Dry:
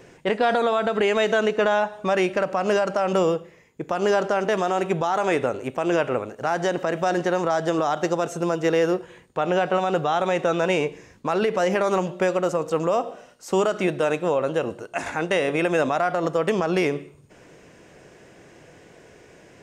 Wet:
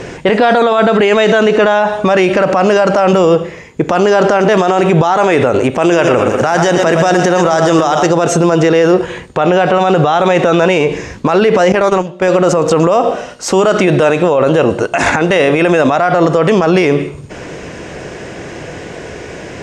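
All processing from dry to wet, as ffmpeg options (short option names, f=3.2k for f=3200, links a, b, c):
-filter_complex "[0:a]asettb=1/sr,asplit=3[a][b][c];[a]atrim=end=5.824[d];[b]atrim=start=5.82:end=8.07,asetpts=PTS-STARTPTS,afade=t=in:d=0.004:c=qsin,afade=t=out:st=2.246:d=0.004:c=qsin,aemphasis=mode=production:type=cd,bandreject=f=4.2k:w=11,aecho=1:1:116|232|348|464:0.316|0.133|0.0558|0.0234,atrim=end_sample=99225[e];[c]atrim=start=8.066[f];[d][e]acrossfade=d=0.004:c1=hsin:c2=qsin[g];[g][f]acrossfade=d=0.004:c1=qsin:c2=hsin,asettb=1/sr,asplit=3[h][i][j];[h]atrim=end=11.724[k];[i]atrim=start=11.72:end=12.28,asetpts=PTS-STARTPTS,afade=t=in:d=0.004:c=qsin,afade=t=out:st=0.556:d=0.004:c=qsin,agate=range=-17dB:threshold=-23dB:ratio=16:release=100:detection=peak,acompressor=threshold=-25dB:ratio=6:attack=3.2:release=140:knee=1:detection=peak[l];[j]atrim=start=12.276[m];[k][l]acrossfade=d=0.004:c1=hsin:c2=qsin[n];[n][m]acrossfade=d=0.004:c1=qsin:c2=hsin,lowpass=7.6k,equalizer=f=64:t=o:w=0.77:g=5,alimiter=level_in=23dB:limit=-1dB:release=50:level=0:latency=1,volume=-1dB"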